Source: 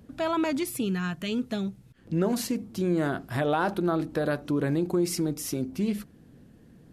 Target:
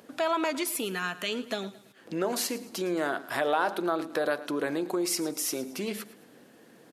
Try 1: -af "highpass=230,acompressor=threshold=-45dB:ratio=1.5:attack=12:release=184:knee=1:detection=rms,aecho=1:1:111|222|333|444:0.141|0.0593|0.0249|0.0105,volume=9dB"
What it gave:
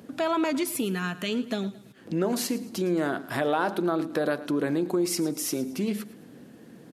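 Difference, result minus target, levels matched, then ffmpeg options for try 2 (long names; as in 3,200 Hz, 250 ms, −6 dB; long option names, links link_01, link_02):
250 Hz band +3.5 dB
-af "highpass=480,acompressor=threshold=-45dB:ratio=1.5:attack=12:release=184:knee=1:detection=rms,aecho=1:1:111|222|333|444:0.141|0.0593|0.0249|0.0105,volume=9dB"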